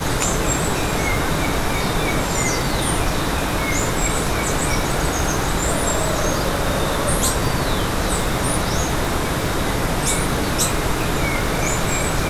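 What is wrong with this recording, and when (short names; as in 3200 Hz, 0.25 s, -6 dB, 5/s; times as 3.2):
crackle 57/s -24 dBFS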